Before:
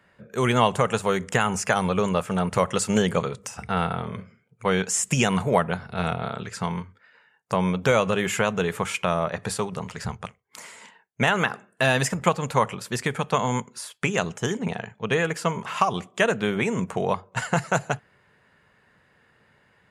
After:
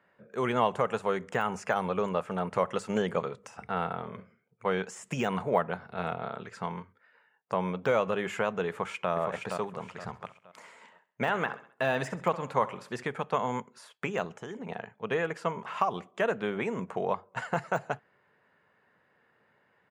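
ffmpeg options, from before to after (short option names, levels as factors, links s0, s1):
-filter_complex "[0:a]asplit=2[s0][s1];[s1]afade=t=in:st=8.69:d=0.01,afade=t=out:st=9.1:d=0.01,aecho=0:1:470|940|1410|1880:0.595662|0.178699|0.0536096|0.0160829[s2];[s0][s2]amix=inputs=2:normalize=0,asettb=1/sr,asplit=3[s3][s4][s5];[s3]atrim=end=9.854[s6];[s4]atrim=start=9.85:end=13.04,asetpts=PTS-STARTPTS,afade=t=in:d=0.004:c=qsin,afade=t=out:st=3.186:d=0.004:c=qsin,aecho=1:1:66|132|198|264:0.141|0.065|0.0299|0.0137,atrim=end_sample=140679[s7];[s5]atrim=start=13.036[s8];[s6][s7]acrossfade=d=0.004:c1=hsin:c2=qsin[s9];[s9][s8]acrossfade=d=0.004:c1=qsin:c2=hsin,asettb=1/sr,asplit=3[s10][s11][s12];[s10]atrim=end=14.264[s13];[s11]atrim=start=14.26:end=14.69,asetpts=PTS-STARTPTS,afade=t=in:d=0.004:c=qsin,afade=t=out:st=0.426:d=0.004:c=qsin,acompressor=threshold=0.0398:ratio=6:attack=3.2:release=140:knee=1:detection=peak[s14];[s12]atrim=start=14.686[s15];[s13][s14]acrossfade=d=0.004:c1=hsin:c2=qsin[s16];[s16][s15]acrossfade=d=0.004:c1=qsin:c2=hsin,lowpass=f=1200:p=1,deesser=0.9,highpass=f=410:p=1,volume=0.794"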